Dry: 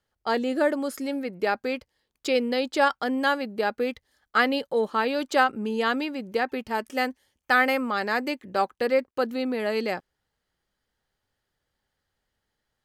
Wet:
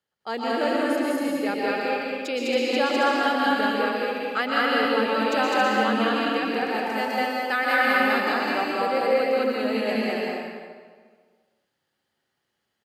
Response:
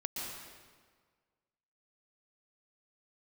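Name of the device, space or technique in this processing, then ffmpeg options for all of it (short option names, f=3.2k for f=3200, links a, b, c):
stadium PA: -filter_complex "[0:a]highpass=140,equalizer=f=2.8k:t=o:w=0.4:g=3.5,aecho=1:1:204.1|274.1:1|0.631[a];[1:a]atrim=start_sample=2205[b];[a][b]afir=irnorm=-1:irlink=0,volume=-3dB"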